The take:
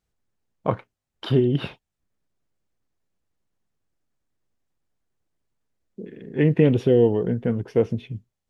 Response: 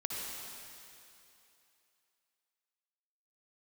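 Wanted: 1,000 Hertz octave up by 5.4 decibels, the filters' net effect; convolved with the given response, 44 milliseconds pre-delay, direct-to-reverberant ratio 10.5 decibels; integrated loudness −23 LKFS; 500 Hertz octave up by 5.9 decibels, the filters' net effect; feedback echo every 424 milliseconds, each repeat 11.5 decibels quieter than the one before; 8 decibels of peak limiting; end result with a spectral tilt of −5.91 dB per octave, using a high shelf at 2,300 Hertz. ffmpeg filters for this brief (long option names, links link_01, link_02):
-filter_complex "[0:a]equalizer=frequency=500:width_type=o:gain=6,equalizer=frequency=1000:width_type=o:gain=6,highshelf=frequency=2300:gain=-7.5,alimiter=limit=-9.5dB:level=0:latency=1,aecho=1:1:424|848|1272:0.266|0.0718|0.0194,asplit=2[link_01][link_02];[1:a]atrim=start_sample=2205,adelay=44[link_03];[link_02][link_03]afir=irnorm=-1:irlink=0,volume=-13.5dB[link_04];[link_01][link_04]amix=inputs=2:normalize=0,volume=-1.5dB"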